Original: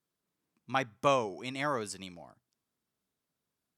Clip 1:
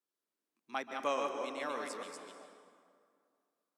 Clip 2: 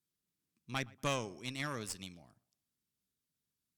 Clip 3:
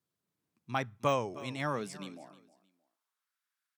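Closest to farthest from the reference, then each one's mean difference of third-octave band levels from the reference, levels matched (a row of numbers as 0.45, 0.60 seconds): 3, 2, 1; 3.0, 6.0, 10.0 decibels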